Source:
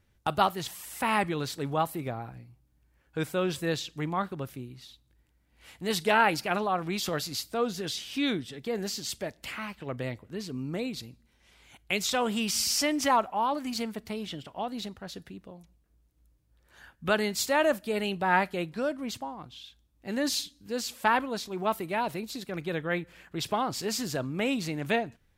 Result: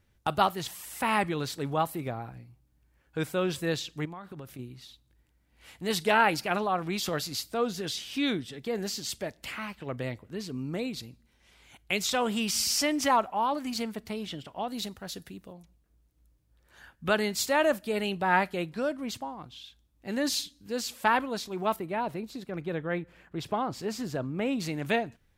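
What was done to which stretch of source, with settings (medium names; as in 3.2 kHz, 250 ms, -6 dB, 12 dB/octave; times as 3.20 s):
4.05–4.59 s: compression 10:1, threshold -38 dBFS
14.70–15.53 s: treble shelf 5.9 kHz +11 dB
21.76–24.60 s: treble shelf 2.2 kHz -10.5 dB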